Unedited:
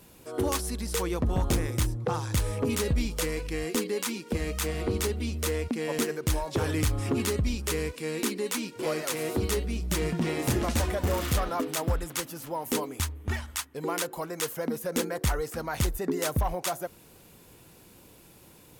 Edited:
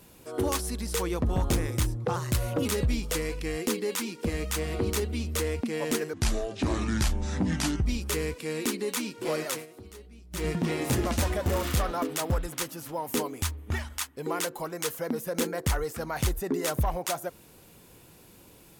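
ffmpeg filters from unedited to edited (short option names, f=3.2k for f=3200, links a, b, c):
-filter_complex "[0:a]asplit=7[a][b][c][d][e][f][g];[a]atrim=end=2.164[h];[b]atrim=start=2.16:end=2.73,asetpts=PTS-STARTPTS,asetrate=50715,aresample=44100,atrim=end_sample=21858,asetpts=PTS-STARTPTS[i];[c]atrim=start=2.726:end=6.214[j];[d]atrim=start=6.21:end=7.43,asetpts=PTS-STARTPTS,asetrate=31311,aresample=44100,atrim=end_sample=75777,asetpts=PTS-STARTPTS[k];[e]atrim=start=7.426:end=9.24,asetpts=PTS-STARTPTS,afade=t=out:st=1.654:d=0.16:silence=0.112202[l];[f]atrim=start=9.24:end=9.88,asetpts=PTS-STARTPTS,volume=-19dB[m];[g]atrim=start=9.88,asetpts=PTS-STARTPTS,afade=t=in:d=0.16:silence=0.112202[n];[h][i]acrossfade=d=0.004:c1=hsin:c2=hsin[o];[o][j]acrossfade=d=0.004:c1=hsin:c2=hsin[p];[p][k]acrossfade=d=0.004:c1=hsin:c2=hsin[q];[l][m][n]concat=n=3:v=0:a=1[r];[q][r]acrossfade=d=0.004:c1=hsin:c2=hsin"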